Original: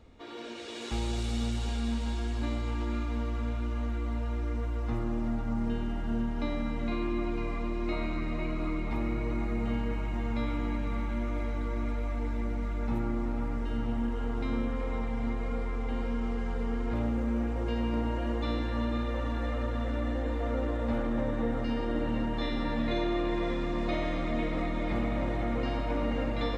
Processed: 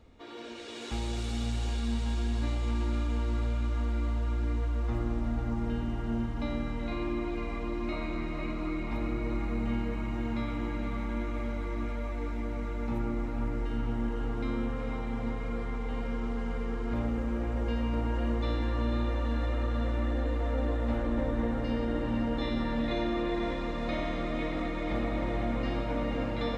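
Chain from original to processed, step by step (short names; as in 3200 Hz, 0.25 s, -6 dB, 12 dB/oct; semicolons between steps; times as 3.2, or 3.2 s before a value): diffused feedback echo 0.478 s, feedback 71%, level -8.5 dB; gain -1.5 dB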